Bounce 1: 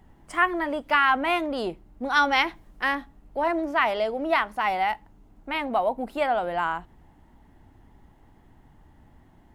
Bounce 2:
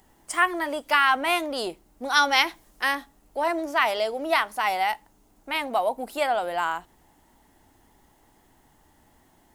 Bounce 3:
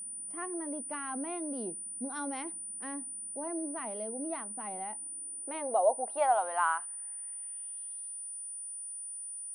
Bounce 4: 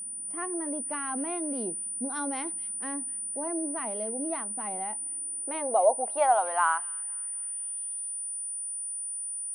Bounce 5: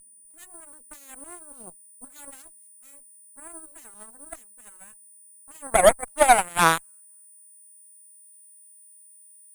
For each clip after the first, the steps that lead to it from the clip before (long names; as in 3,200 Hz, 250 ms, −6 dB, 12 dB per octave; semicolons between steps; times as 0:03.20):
bass and treble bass −10 dB, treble +14 dB
band-pass filter sweep 220 Hz → 5,600 Hz, 0:04.80–0:08.35; steady tone 9,400 Hz −40 dBFS; level +1 dB
delay with a high-pass on its return 250 ms, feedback 42%, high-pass 3,100 Hz, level −13.5 dB; level +4 dB
harmonic generator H 2 −8 dB, 7 −16 dB, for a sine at −10.5 dBFS; phase shifter 1.2 Hz, delay 3.5 ms, feedback 22%; level +6 dB